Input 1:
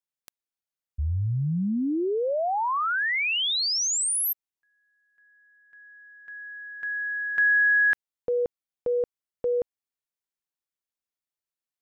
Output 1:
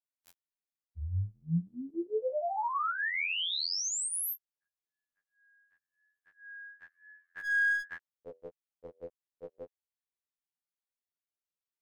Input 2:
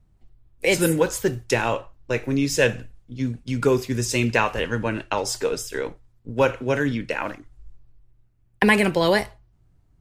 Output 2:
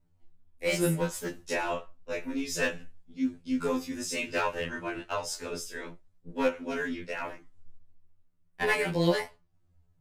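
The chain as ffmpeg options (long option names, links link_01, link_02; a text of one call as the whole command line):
ffmpeg -i in.wav -af "flanger=delay=18:depth=6.4:speed=0.95,aeval=exprs='clip(val(0),-1,0.112)':channel_layout=same,afftfilt=real='re*2*eq(mod(b,4),0)':imag='im*2*eq(mod(b,4),0)':win_size=2048:overlap=0.75,volume=-2.5dB" out.wav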